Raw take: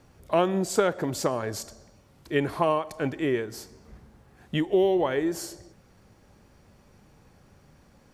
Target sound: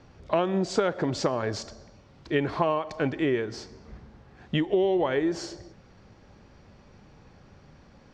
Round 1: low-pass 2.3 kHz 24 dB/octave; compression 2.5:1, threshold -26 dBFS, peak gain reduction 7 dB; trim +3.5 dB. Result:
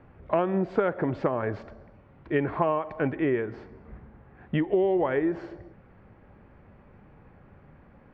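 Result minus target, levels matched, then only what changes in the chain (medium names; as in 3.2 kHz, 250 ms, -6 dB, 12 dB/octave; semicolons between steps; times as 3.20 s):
4 kHz band -13.5 dB
change: low-pass 5.6 kHz 24 dB/octave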